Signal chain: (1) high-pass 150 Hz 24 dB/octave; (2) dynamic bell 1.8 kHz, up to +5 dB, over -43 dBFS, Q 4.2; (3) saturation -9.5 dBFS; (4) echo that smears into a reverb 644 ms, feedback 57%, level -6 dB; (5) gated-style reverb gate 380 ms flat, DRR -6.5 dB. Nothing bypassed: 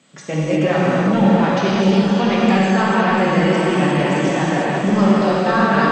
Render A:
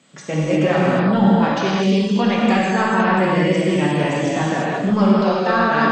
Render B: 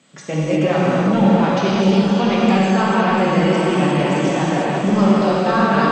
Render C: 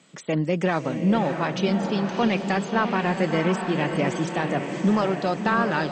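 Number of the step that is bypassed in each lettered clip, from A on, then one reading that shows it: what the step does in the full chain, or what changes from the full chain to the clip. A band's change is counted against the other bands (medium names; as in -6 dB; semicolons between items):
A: 4, echo-to-direct 8.0 dB to 6.5 dB; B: 2, 2 kHz band -2.5 dB; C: 5, echo-to-direct 8.0 dB to -4.5 dB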